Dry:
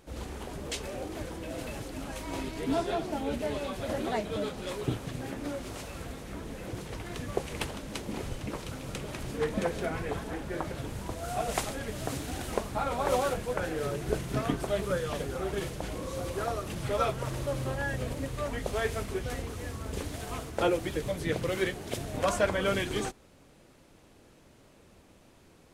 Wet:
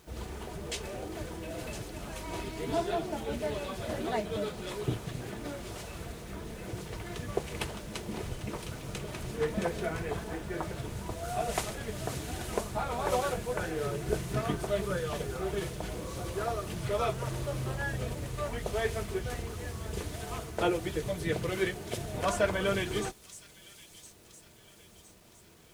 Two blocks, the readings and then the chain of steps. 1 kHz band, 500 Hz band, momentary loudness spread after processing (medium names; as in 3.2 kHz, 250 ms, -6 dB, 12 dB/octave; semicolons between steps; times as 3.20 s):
-1.5 dB, -1.5 dB, 10 LU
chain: comb of notches 270 Hz; feedback echo behind a high-pass 1012 ms, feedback 47%, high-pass 4.7 kHz, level -7.5 dB; bit crusher 10-bit